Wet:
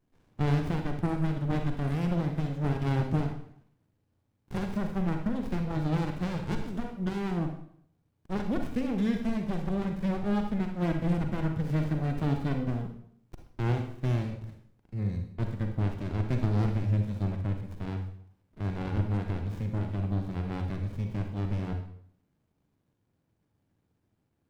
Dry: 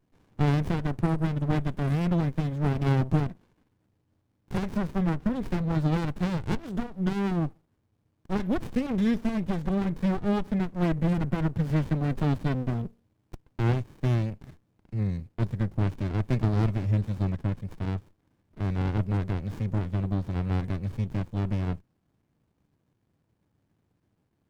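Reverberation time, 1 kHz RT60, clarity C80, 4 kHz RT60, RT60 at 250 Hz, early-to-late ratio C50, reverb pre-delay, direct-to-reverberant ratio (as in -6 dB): 0.65 s, 0.65 s, 10.0 dB, 0.55 s, 0.70 s, 6.0 dB, 38 ms, 4.0 dB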